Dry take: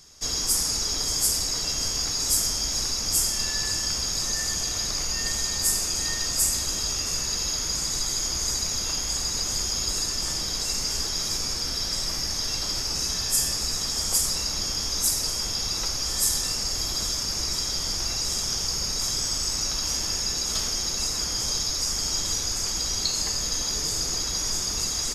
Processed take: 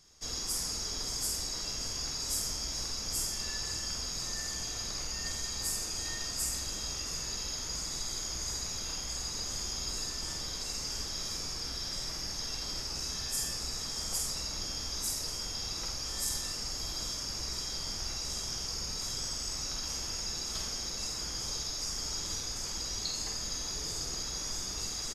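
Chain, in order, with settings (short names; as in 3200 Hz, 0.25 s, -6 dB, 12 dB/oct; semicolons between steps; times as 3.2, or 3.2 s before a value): high shelf 7400 Hz -5.5 dB; doubler 48 ms -5 dB; gain -9 dB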